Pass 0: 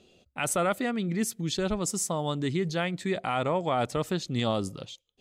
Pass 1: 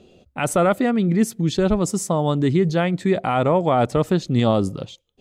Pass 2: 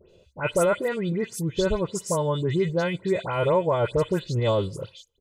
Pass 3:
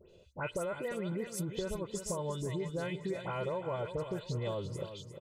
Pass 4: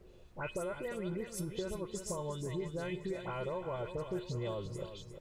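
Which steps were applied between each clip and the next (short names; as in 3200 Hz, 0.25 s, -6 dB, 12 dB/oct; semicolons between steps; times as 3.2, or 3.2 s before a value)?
tilt shelf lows +5 dB, about 1400 Hz; gain +6 dB
comb 2 ms, depth 76%; dispersion highs, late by 0.1 s, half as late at 2400 Hz; gain -6 dB
compressor 6:1, threshold -30 dBFS, peak gain reduction 12.5 dB; on a send: feedback echo 0.352 s, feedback 41%, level -10 dB; on the sum: gain -4 dB
resonator 360 Hz, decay 0.43 s, harmonics odd, mix 70%; added noise brown -64 dBFS; gain +7.5 dB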